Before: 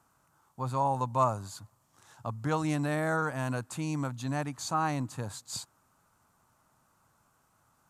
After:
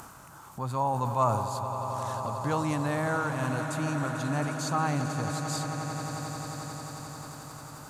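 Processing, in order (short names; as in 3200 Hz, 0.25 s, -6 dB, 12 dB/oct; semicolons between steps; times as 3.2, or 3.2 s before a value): upward compressor, threshold -33 dBFS; swelling echo 89 ms, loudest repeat 8, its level -13.5 dB; sustainer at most 43 dB/s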